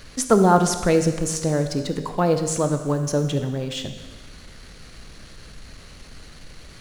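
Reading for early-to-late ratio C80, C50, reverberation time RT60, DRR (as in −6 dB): 10.0 dB, 8.5 dB, 1.3 s, 7.0 dB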